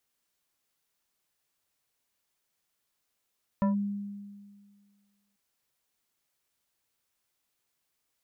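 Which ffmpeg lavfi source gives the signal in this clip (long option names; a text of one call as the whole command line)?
ffmpeg -f lavfi -i "aevalsrc='0.0891*pow(10,-3*t/1.82)*sin(2*PI*202*t+0.73*clip(1-t/0.13,0,1)*sin(2*PI*3.87*202*t))':duration=1.74:sample_rate=44100" out.wav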